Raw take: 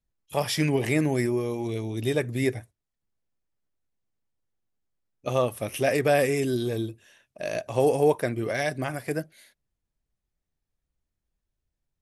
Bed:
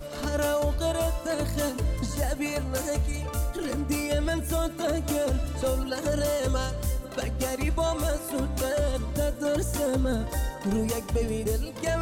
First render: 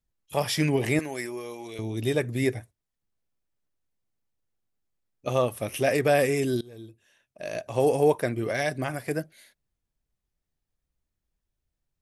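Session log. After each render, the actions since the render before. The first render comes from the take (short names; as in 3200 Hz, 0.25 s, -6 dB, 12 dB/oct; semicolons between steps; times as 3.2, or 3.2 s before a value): 0.99–1.79 HPF 990 Hz 6 dB/oct; 6.61–7.96 fade in, from -23.5 dB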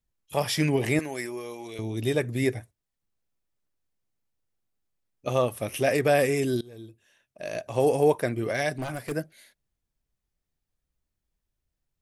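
8.72–9.12 hard clip -27 dBFS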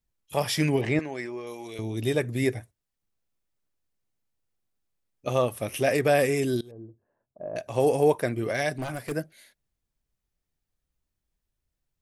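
0.81–1.47 air absorption 130 m; 6.71–7.56 LPF 1000 Hz 24 dB/oct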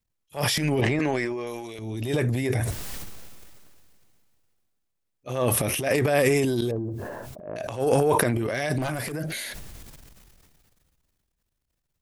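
transient shaper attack -10 dB, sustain +11 dB; sustainer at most 23 dB/s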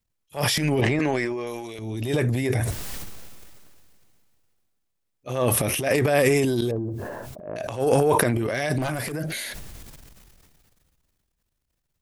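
gain +1.5 dB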